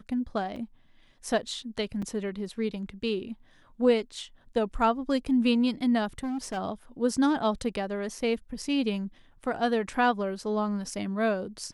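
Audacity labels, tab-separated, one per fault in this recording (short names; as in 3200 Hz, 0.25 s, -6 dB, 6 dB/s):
0.560000	0.560000	gap 3.7 ms
2.020000	2.020000	gap 4.7 ms
6.180000	6.580000	clipped -29 dBFS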